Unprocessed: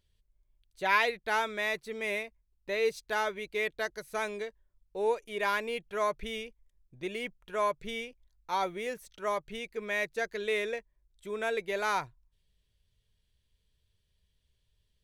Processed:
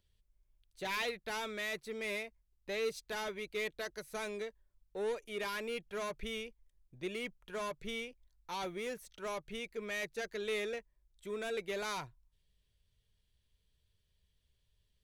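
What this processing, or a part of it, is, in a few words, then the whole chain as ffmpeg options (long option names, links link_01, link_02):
one-band saturation: -filter_complex "[0:a]acrossover=split=370|2800[link_01][link_02][link_03];[link_02]asoftclip=type=tanh:threshold=-37dB[link_04];[link_01][link_04][link_03]amix=inputs=3:normalize=0,volume=-2dB"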